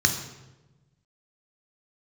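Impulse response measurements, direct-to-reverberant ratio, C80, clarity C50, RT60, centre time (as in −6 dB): 4.0 dB, 10.0 dB, 8.0 dB, 1.1 s, 20 ms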